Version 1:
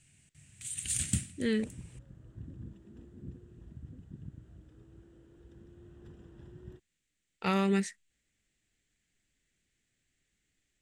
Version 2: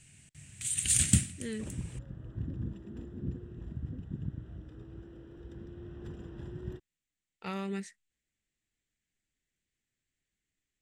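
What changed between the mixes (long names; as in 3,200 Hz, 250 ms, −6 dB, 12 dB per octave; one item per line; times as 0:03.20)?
speech −8.5 dB
first sound +6.5 dB
second sound +8.5 dB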